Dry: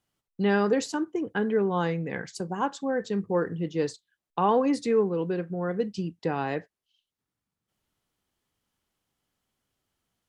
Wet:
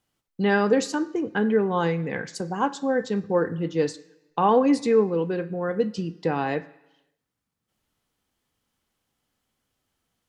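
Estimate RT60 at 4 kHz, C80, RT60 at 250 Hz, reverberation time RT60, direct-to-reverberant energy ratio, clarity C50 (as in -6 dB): 0.95 s, 20.0 dB, 0.90 s, 0.95 s, 10.5 dB, 17.5 dB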